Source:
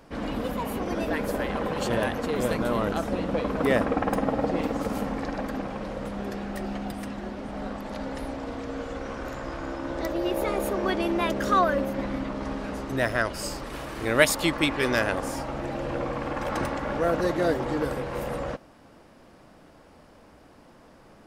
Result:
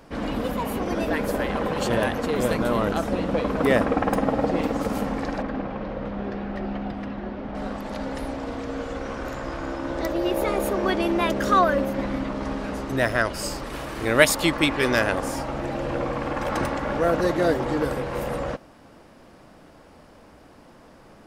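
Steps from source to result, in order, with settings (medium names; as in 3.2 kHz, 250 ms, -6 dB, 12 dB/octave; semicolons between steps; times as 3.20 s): 5.42–7.55 s: distance through air 240 m; trim +3 dB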